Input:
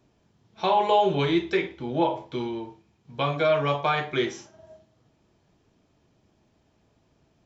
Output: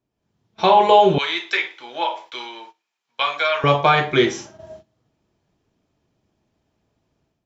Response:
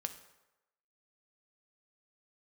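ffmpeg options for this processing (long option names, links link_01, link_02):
-filter_complex "[0:a]asettb=1/sr,asplit=3[link_01][link_02][link_03];[link_01]atrim=end=1.184[link_04];[link_02]atrim=start=1.18:end=3.64,asetpts=PTS-STARTPTS,afade=type=in:duration=0.004:curve=qsin,afade=type=out:start_time=2.456:duration=0.004:curve=qsin,highpass=1200[link_05];[link_03]atrim=start=3.636[link_06];[link_04][link_05]acrossfade=duration=0.004:curve1=hsin:curve2=qsin[link_07];[link_07][link_06]acrossfade=duration=0.004:curve1=qsin:curve2=hsin,agate=range=-15dB:threshold=-52dB:ratio=16:detection=peak,dynaudnorm=framelen=100:gausssize=5:maxgain=10.5dB"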